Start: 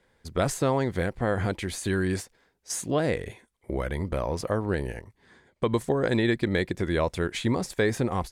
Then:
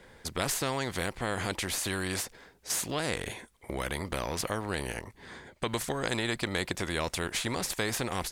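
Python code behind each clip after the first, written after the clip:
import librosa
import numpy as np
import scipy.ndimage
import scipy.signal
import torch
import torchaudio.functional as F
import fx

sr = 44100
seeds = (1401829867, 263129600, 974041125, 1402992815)

y = fx.spectral_comp(x, sr, ratio=2.0)
y = y * 10.0 ** (-2.0 / 20.0)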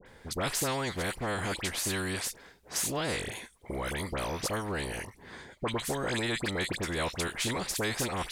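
y = fx.dispersion(x, sr, late='highs', ms=62.0, hz=1800.0)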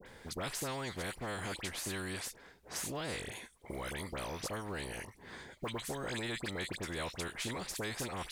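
y = fx.mod_noise(x, sr, seeds[0], snr_db=35)
y = fx.band_squash(y, sr, depth_pct=40)
y = y * 10.0 ** (-7.5 / 20.0)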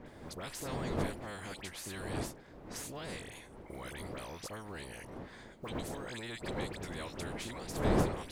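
y = fx.dmg_wind(x, sr, seeds[1], corner_hz=470.0, level_db=-36.0)
y = y * 10.0 ** (-4.5 / 20.0)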